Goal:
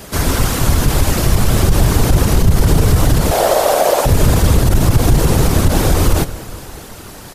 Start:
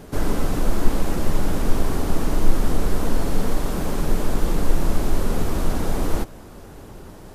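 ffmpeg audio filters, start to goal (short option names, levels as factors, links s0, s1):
-filter_complex "[0:a]tiltshelf=f=1300:g=-6.5,acrossover=split=830[s0][s1];[s0]dynaudnorm=f=410:g=7:m=2.24[s2];[s2][s1]amix=inputs=2:normalize=0,asettb=1/sr,asplit=3[s3][s4][s5];[s3]atrim=end=3.314[s6];[s4]atrim=start=3.31:end=4.06,asetpts=PTS-STARTPTS,afade=t=in:d=0.004:c=qsin,afade=t=out:st=0.746:d=0.004:c=qsin,highpass=f=620:t=q:w=6.5[s7];[s5]atrim=start=4.056[s8];[s6][s7]acrossfade=d=0.004:c1=hsin:c2=qsin[s9];[s9][s8]acrossfade=d=0.004:c1=qsin:c2=hsin,acontrast=61,afftfilt=real='hypot(re,im)*cos(2*PI*random(0))':imag='hypot(re,im)*sin(2*PI*random(1))':win_size=512:overlap=0.75,aecho=1:1:203|406|609|812:0.0944|0.0538|0.0307|0.0175,alimiter=level_in=3.76:limit=0.891:release=50:level=0:latency=1,volume=0.891"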